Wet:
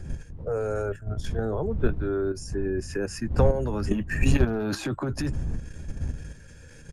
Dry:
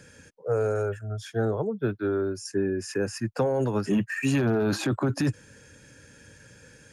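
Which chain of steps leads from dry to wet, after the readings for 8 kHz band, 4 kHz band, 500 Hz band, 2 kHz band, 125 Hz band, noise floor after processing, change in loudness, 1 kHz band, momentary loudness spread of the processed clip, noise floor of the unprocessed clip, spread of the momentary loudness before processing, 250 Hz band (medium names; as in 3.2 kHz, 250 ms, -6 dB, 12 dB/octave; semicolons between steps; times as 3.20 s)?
-1.5 dB, -1.5 dB, -1.0 dB, -1.0 dB, +2.0 dB, -47 dBFS, -1.0 dB, -1.0 dB, 13 LU, -54 dBFS, 6 LU, -2.0 dB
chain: wind noise 84 Hz -28 dBFS; level held to a coarse grid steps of 10 dB; doubling 13 ms -13 dB; trim +3 dB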